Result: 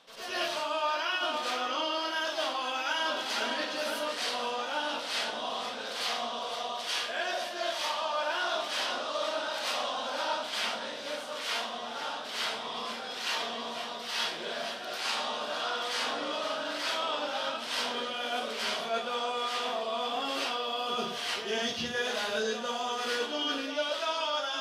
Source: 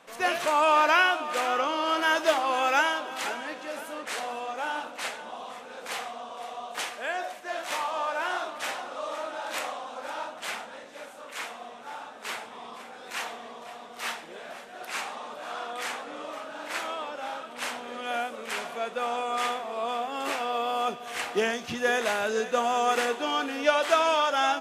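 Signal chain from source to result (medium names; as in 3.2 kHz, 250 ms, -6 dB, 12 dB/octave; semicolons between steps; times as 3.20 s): high-order bell 4.1 kHz +10.5 dB 1.1 oct; reverse; compression 16:1, threshold -32 dBFS, peak gain reduction 17.5 dB; reverse; reverberation RT60 0.40 s, pre-delay 89 ms, DRR -10 dB; trim -6 dB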